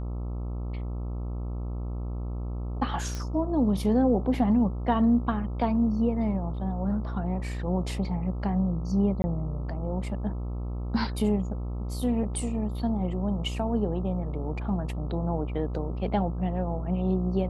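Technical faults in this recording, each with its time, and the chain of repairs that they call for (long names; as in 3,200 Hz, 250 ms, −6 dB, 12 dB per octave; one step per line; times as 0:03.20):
mains buzz 60 Hz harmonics 22 −32 dBFS
0:03.15: click −20 dBFS
0:09.22–0:09.24: drop-out 20 ms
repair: click removal
hum removal 60 Hz, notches 22
repair the gap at 0:09.22, 20 ms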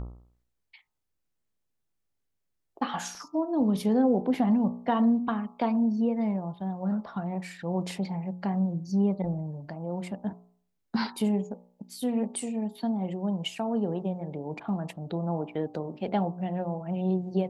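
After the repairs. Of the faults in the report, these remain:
none of them is left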